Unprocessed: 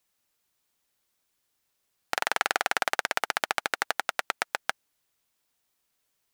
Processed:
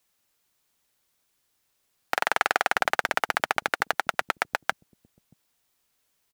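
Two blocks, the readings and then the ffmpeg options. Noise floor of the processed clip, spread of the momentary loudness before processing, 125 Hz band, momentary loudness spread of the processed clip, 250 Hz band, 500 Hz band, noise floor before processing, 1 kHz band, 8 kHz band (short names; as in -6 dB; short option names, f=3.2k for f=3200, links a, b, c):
-74 dBFS, 5 LU, +4.5 dB, 5 LU, +3.5 dB, +3.5 dB, -77 dBFS, +3.5 dB, -2.5 dB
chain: -filter_complex "[0:a]acrossover=split=220|2300[a][b][c];[a]aecho=1:1:629:0.562[d];[c]asoftclip=type=tanh:threshold=-22dB[e];[d][b][e]amix=inputs=3:normalize=0,volume=3.5dB"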